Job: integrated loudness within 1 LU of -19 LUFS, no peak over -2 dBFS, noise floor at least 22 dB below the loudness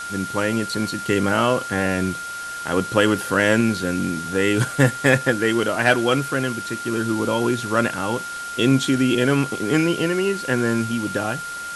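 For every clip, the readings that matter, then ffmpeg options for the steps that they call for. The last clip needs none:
steady tone 1.4 kHz; tone level -29 dBFS; noise floor -31 dBFS; noise floor target -43 dBFS; loudness -21.0 LUFS; peak level -1.5 dBFS; loudness target -19.0 LUFS
-> -af "bandreject=f=1400:w=30"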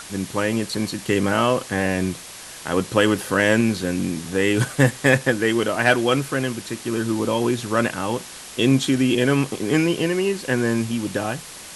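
steady tone not found; noise floor -39 dBFS; noise floor target -43 dBFS
-> -af "afftdn=nr=6:nf=-39"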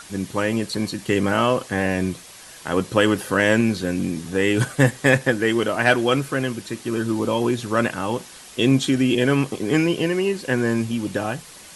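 noise floor -43 dBFS; noise floor target -44 dBFS
-> -af "afftdn=nr=6:nf=-43"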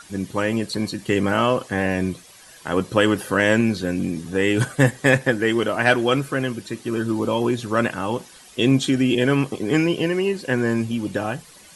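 noise floor -47 dBFS; loudness -21.5 LUFS; peak level -2.0 dBFS; loudness target -19.0 LUFS
-> -af "volume=1.33,alimiter=limit=0.794:level=0:latency=1"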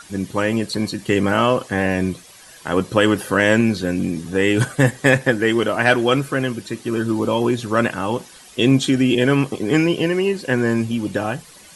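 loudness -19.0 LUFS; peak level -2.0 dBFS; noise floor -44 dBFS

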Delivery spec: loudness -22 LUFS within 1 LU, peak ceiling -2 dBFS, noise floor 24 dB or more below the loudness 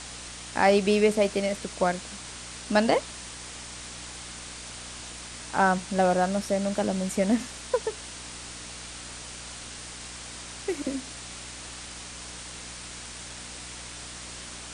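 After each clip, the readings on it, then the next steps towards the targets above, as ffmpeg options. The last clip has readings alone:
hum 60 Hz; highest harmonic 300 Hz; hum level -46 dBFS; noise floor -41 dBFS; noise floor target -54 dBFS; loudness -29.5 LUFS; peak level -8.0 dBFS; loudness target -22.0 LUFS
-> -af "bandreject=f=60:t=h:w=4,bandreject=f=120:t=h:w=4,bandreject=f=180:t=h:w=4,bandreject=f=240:t=h:w=4,bandreject=f=300:t=h:w=4"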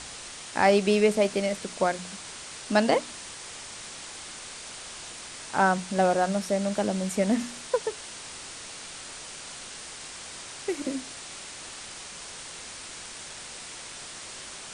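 hum not found; noise floor -42 dBFS; noise floor target -54 dBFS
-> -af "afftdn=nr=12:nf=-42"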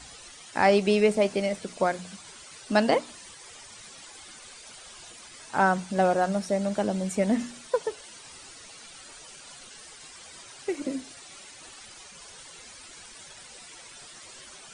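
noise floor -48 dBFS; noise floor target -51 dBFS
-> -af "afftdn=nr=6:nf=-48"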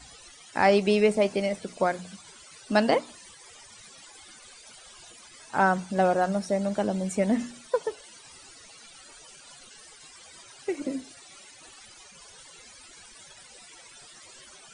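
noise floor -51 dBFS; loudness -26.5 LUFS; peak level -7.5 dBFS; loudness target -22.0 LUFS
-> -af "volume=1.68"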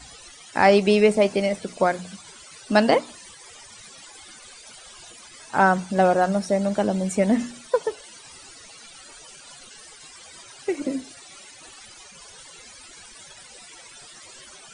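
loudness -22.0 LUFS; peak level -3.0 dBFS; noise floor -46 dBFS

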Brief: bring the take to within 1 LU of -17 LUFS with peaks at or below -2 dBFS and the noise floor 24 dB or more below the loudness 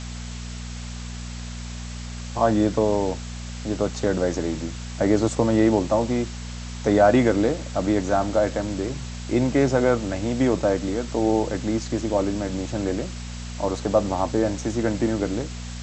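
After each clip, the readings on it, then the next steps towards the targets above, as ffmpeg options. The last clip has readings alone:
hum 60 Hz; highest harmonic 240 Hz; hum level -32 dBFS; noise floor -34 dBFS; noise floor target -48 dBFS; loudness -23.5 LUFS; peak level -6.0 dBFS; loudness target -17.0 LUFS
-> -af "bandreject=f=60:t=h:w=4,bandreject=f=120:t=h:w=4,bandreject=f=180:t=h:w=4,bandreject=f=240:t=h:w=4"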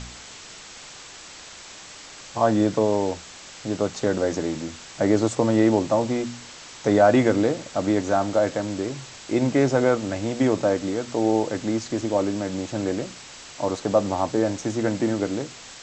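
hum not found; noise floor -43 dBFS; noise floor target -48 dBFS
-> -af "afftdn=nr=6:nf=-43"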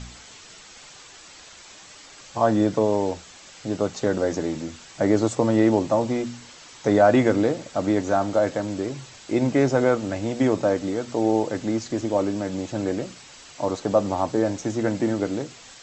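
noise floor -46 dBFS; noise floor target -48 dBFS
-> -af "afftdn=nr=6:nf=-46"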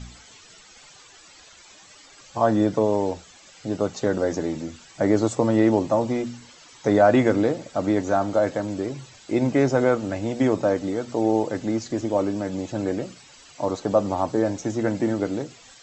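noise floor -50 dBFS; loudness -23.5 LUFS; peak level -6.5 dBFS; loudness target -17.0 LUFS
-> -af "volume=2.11,alimiter=limit=0.794:level=0:latency=1"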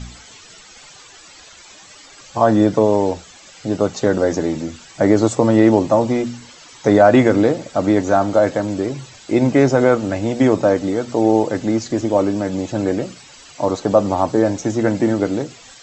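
loudness -17.0 LUFS; peak level -2.0 dBFS; noise floor -43 dBFS

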